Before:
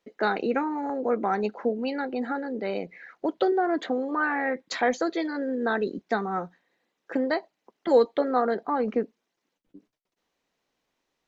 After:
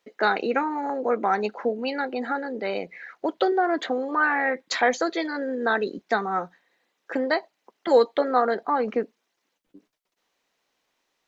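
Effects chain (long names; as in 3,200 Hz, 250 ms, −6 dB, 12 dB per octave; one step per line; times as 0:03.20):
low-shelf EQ 390 Hz −10 dB
level +5.5 dB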